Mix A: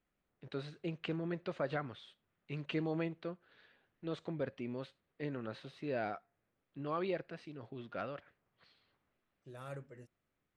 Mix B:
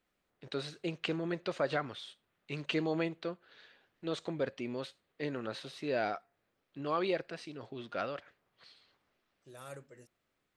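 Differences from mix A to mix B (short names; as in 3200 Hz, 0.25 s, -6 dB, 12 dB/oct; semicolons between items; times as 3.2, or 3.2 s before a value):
first voice +5.0 dB; master: add tone controls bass -6 dB, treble +11 dB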